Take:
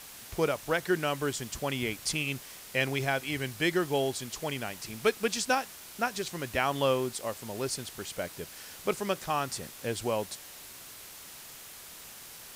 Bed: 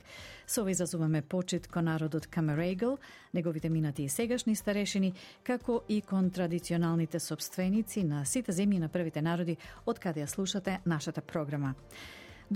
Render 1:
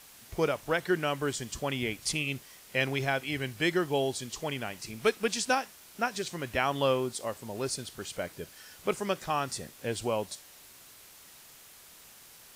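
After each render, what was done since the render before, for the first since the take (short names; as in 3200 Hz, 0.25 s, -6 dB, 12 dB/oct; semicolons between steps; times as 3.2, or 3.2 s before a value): noise print and reduce 6 dB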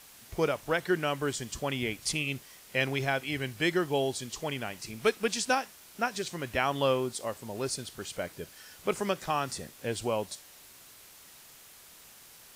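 8.95–9.59 three-band squash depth 40%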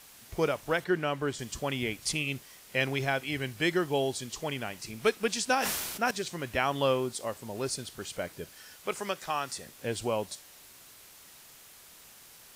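0.84–1.39 high shelf 4700 Hz -9.5 dB; 5.54–6.11 sustainer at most 33 dB/s; 8.76–9.67 low shelf 430 Hz -9.5 dB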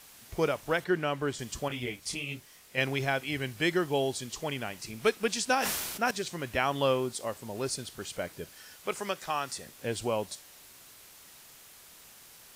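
1.68–2.78 detuned doubles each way 37 cents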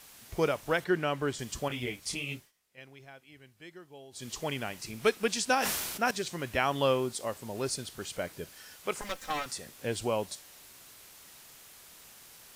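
2.34–4.29 dip -21.5 dB, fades 0.18 s; 9.01–9.46 minimum comb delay 3.8 ms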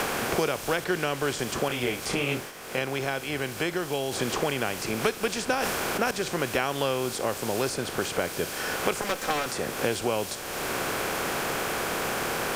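per-bin compression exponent 0.6; three-band squash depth 100%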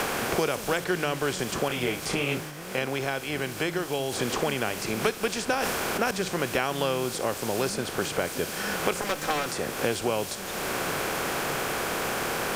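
add bed -12 dB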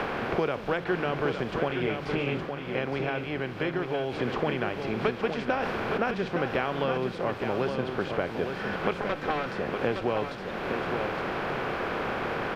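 air absorption 350 m; echo 0.865 s -6.5 dB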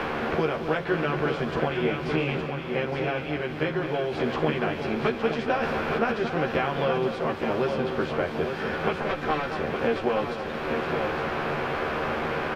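doubler 13 ms -2 dB; outdoor echo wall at 39 m, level -9 dB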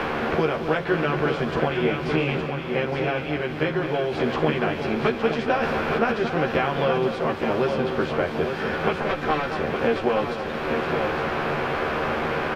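gain +3 dB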